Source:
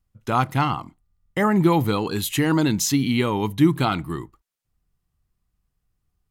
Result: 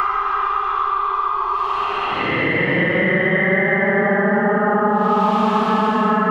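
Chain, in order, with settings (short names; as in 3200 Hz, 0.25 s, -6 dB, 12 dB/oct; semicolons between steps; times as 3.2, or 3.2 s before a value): on a send: delay with a stepping band-pass 0.183 s, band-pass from 230 Hz, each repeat 1.4 oct, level 0 dB; on the sum: buzz 400 Hz, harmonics 17, -49 dBFS -4 dB/oct; LFO low-pass saw down 8.9 Hz 850–3000 Hz; Paulstretch 31×, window 0.05 s, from 1.28; three-band squash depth 100%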